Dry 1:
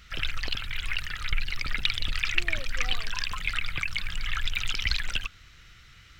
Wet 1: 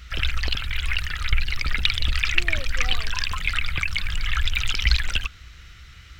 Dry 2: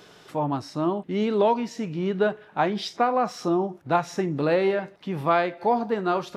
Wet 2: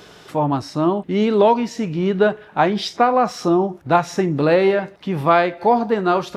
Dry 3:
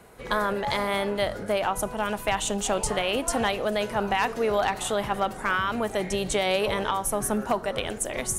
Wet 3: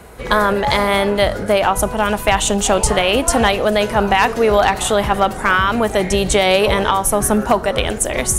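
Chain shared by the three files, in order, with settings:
peaking EQ 61 Hz +11 dB 0.66 oct; peak normalisation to -2 dBFS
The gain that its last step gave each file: +4.5 dB, +6.5 dB, +10.5 dB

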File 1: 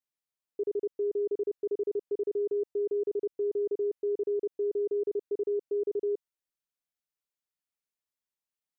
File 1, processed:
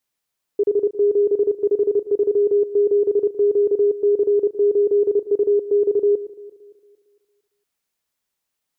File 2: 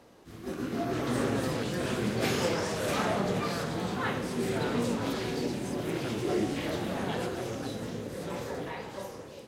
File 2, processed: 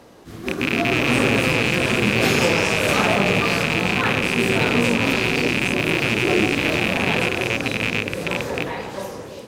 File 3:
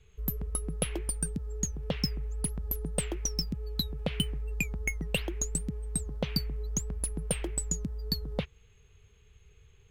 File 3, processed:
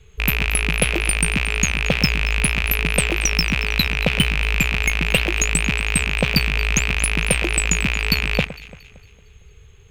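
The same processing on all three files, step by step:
rattle on loud lows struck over -38 dBFS, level -18 dBFS; echo whose repeats swap between lows and highs 114 ms, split 1.9 kHz, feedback 65%, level -14 dB; normalise loudness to -19 LUFS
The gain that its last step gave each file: +12.5 dB, +9.5 dB, +11.0 dB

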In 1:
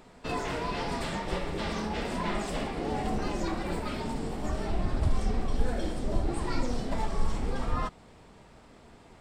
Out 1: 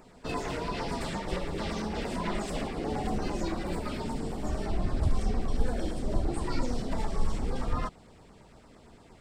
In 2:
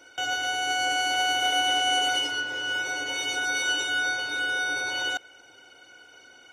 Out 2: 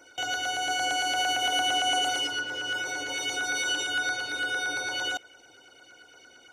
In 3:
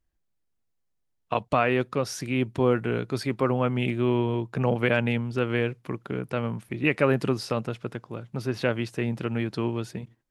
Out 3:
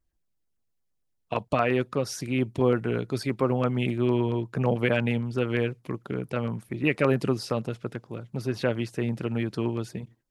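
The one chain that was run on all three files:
LFO notch saw down 8.8 Hz 660–4000 Hz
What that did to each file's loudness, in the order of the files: -0.5 LU, -2.0 LU, -0.5 LU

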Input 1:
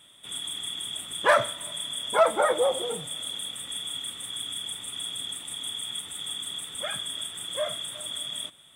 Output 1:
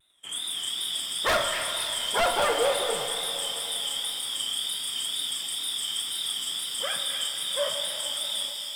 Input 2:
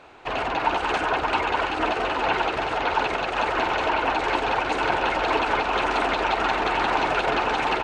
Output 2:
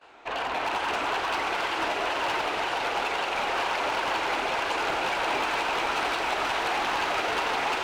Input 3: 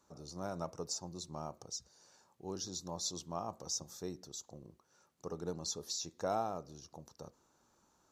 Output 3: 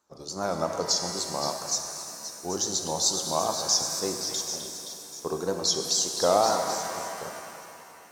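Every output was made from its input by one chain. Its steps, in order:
de-hum 75.69 Hz, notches 5; gate -52 dBFS, range -15 dB; bass shelf 230 Hz -11.5 dB; in parallel at -0.5 dB: peak limiter -18.5 dBFS; on the sum: wavefolder -14 dBFS; wow and flutter 130 cents; on a send: repeats whose band climbs or falls 261 ms, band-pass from 2.5 kHz, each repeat 0.7 oct, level -4.5 dB; on the sum: pitch-shifted reverb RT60 3 s, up +7 st, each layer -8 dB, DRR 5 dB; normalise loudness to -27 LUFS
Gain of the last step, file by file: -4.0 dB, -8.5 dB, +8.5 dB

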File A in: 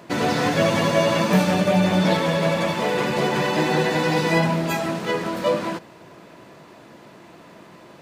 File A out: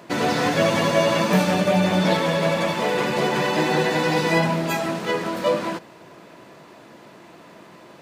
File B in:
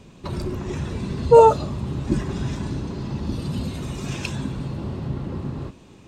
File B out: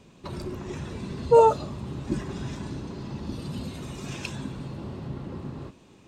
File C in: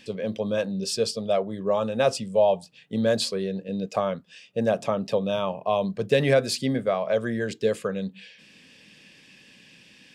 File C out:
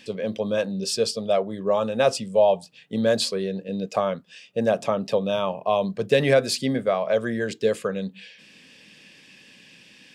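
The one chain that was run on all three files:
bass shelf 120 Hz -6.5 dB; peak normalisation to -6 dBFS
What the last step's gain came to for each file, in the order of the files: +0.5 dB, -4.5 dB, +2.0 dB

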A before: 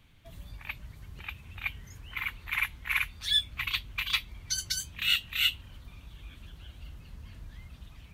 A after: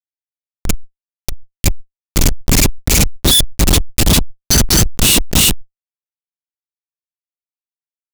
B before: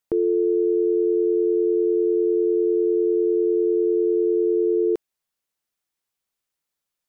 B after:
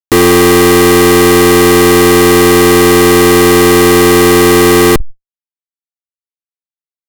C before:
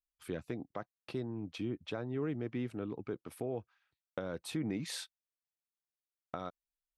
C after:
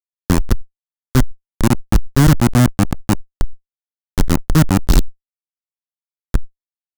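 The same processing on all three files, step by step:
treble shelf 7.3 kHz +5 dB; Schmitt trigger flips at -30.5 dBFS; Chebyshev band-stop 260–5100 Hz, order 2; fuzz box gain 51 dB, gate -50 dBFS; decay stretcher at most 77 dB/s; peak normalisation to -1.5 dBFS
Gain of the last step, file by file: +5.5 dB, +8.0 dB, +7.0 dB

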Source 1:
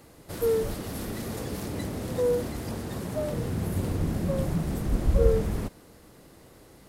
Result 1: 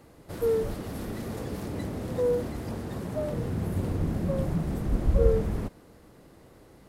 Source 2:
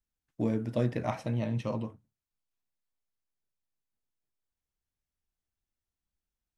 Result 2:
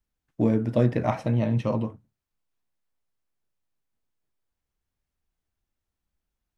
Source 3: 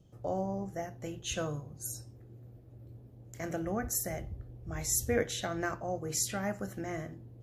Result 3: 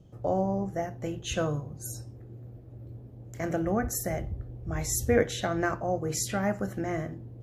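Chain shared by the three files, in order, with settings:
treble shelf 2.8 kHz -7.5 dB; peak normalisation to -9 dBFS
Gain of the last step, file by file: -0.5 dB, +7.5 dB, +7.0 dB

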